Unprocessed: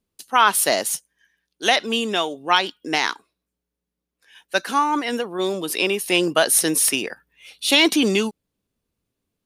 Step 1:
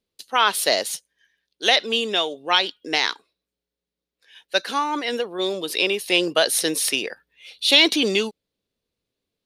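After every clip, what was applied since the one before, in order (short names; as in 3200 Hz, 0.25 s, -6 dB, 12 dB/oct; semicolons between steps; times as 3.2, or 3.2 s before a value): graphic EQ 500/2000/4000 Hz +8/+4/+11 dB; gain -7 dB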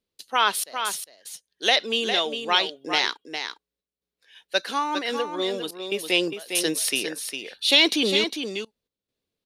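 step gate "xxx.xx.xxxxx" 71 bpm -24 dB; short-mantissa float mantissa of 8-bit; on a send: echo 0.405 s -7.5 dB; on the sum: gain -2.5 dB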